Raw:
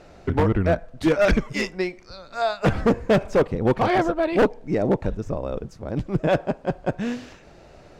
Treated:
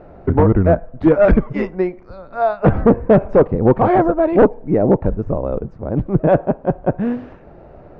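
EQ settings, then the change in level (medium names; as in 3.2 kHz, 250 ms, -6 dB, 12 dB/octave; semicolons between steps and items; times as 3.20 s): low-pass 1.1 kHz 12 dB/octave; +7.5 dB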